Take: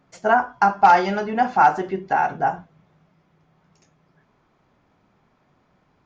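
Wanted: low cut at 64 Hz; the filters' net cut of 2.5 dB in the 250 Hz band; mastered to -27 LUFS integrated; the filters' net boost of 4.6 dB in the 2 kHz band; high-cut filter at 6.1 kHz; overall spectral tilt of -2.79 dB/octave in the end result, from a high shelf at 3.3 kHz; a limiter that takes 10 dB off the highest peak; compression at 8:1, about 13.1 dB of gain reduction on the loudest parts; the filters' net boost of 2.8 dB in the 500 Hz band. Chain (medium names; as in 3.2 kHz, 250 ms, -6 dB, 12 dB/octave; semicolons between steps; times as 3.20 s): high-pass 64 Hz; low-pass 6.1 kHz; peaking EQ 250 Hz -5.5 dB; peaking EQ 500 Hz +5 dB; peaking EQ 2 kHz +5 dB; treble shelf 3.3 kHz +6 dB; compression 8:1, threshold -20 dBFS; trim +0.5 dB; peak limiter -15 dBFS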